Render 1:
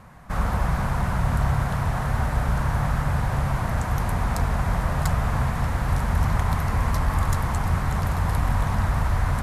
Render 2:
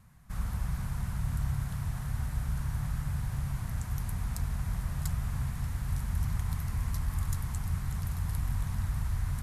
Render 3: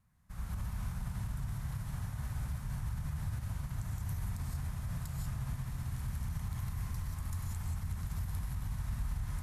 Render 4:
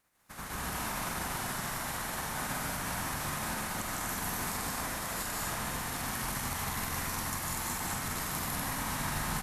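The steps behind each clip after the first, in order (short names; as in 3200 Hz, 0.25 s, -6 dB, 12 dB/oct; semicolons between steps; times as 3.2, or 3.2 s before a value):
EQ curve 130 Hz 0 dB, 560 Hz -15 dB, 12000 Hz +5 dB; gain -8.5 dB
non-linear reverb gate 0.21 s rising, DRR 0 dB; limiter -23.5 dBFS, peak gain reduction 8 dB; upward expander 1.5:1, over -47 dBFS; gain -4.5 dB
spectral limiter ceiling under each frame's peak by 28 dB; loudspeakers at several distances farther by 52 m -1 dB, 68 m -2 dB, 84 m -1 dB; gain -3.5 dB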